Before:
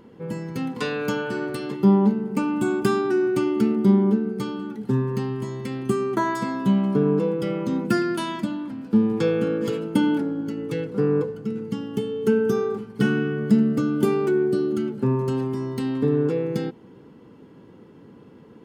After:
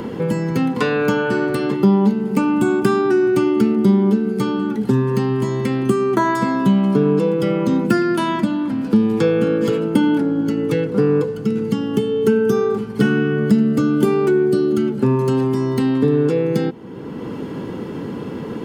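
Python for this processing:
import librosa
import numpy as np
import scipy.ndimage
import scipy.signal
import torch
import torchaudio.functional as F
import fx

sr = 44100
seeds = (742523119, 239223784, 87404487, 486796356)

y = fx.band_squash(x, sr, depth_pct=70)
y = F.gain(torch.from_numpy(y), 5.5).numpy()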